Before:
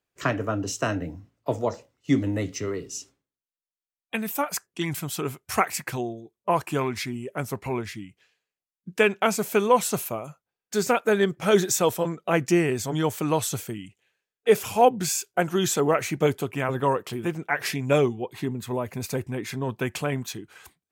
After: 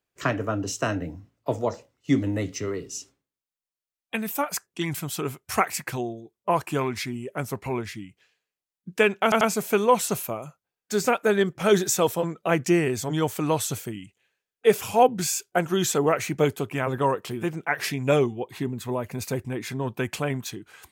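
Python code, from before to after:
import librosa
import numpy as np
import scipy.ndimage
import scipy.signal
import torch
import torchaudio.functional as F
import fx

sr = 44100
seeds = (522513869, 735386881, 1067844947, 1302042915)

y = fx.edit(x, sr, fx.stutter(start_s=9.23, slice_s=0.09, count=3), tone=tone)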